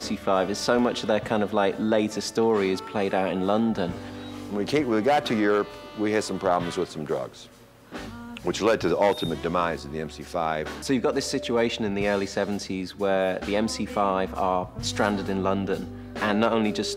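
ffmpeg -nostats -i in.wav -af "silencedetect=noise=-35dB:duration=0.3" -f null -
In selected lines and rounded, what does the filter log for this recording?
silence_start: 7.43
silence_end: 7.92 | silence_duration: 0.49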